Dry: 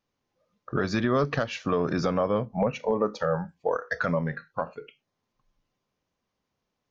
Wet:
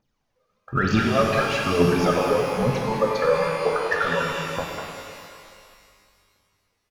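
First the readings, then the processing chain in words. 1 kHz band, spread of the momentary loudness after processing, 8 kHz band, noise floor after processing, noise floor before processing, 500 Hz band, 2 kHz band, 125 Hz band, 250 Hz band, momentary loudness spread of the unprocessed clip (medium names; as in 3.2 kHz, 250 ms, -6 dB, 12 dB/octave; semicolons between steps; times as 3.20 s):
+6.5 dB, 13 LU, no reading, -74 dBFS, -82 dBFS, +5.0 dB, +7.5 dB, +4.5 dB, +4.0 dB, 9 LU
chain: reverb removal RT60 1.5 s; wow and flutter 16 cents; phaser 1.1 Hz, delay 2.6 ms, feedback 77%; speakerphone echo 200 ms, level -6 dB; pitch-shifted reverb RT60 2.2 s, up +12 st, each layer -8 dB, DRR 0 dB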